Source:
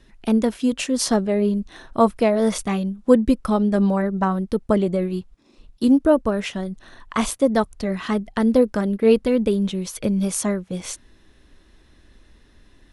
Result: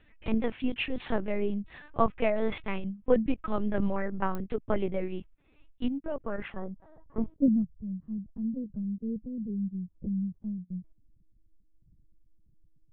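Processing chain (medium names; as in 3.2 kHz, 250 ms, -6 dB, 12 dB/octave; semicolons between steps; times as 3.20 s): 5.87–6.38 s: level held to a coarse grid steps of 23 dB; low-pass sweep 2.5 kHz -> 140 Hz, 6.17–7.78 s; LPC vocoder at 8 kHz pitch kept; clicks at 4.35 s, -14 dBFS; trim -8.5 dB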